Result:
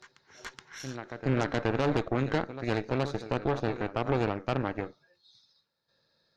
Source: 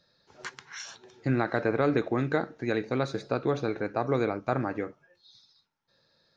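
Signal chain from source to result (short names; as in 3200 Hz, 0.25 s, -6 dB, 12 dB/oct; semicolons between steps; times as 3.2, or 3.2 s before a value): reverse echo 0.423 s -11.5 dB; added harmonics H 6 -13 dB, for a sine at -11.5 dBFS; gain -4 dB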